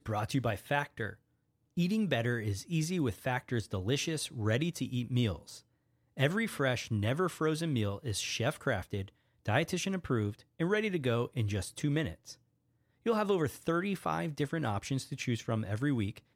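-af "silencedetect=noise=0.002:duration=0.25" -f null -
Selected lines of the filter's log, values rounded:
silence_start: 1.15
silence_end: 1.77 | silence_duration: 0.62
silence_start: 5.61
silence_end: 6.17 | silence_duration: 0.56
silence_start: 9.09
silence_end: 9.45 | silence_duration: 0.36
silence_start: 12.35
silence_end: 13.06 | silence_duration: 0.70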